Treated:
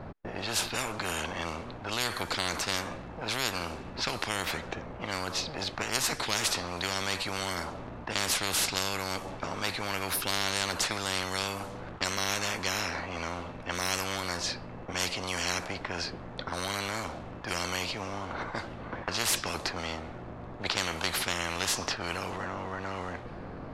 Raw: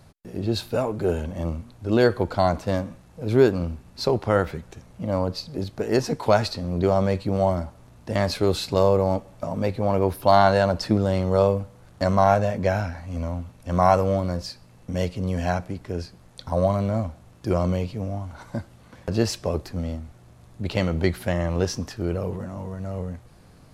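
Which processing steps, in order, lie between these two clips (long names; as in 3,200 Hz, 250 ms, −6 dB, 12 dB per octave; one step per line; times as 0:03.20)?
low-pass that shuts in the quiet parts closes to 1,500 Hz, open at −19 dBFS
every bin compressed towards the loudest bin 10 to 1
level −8 dB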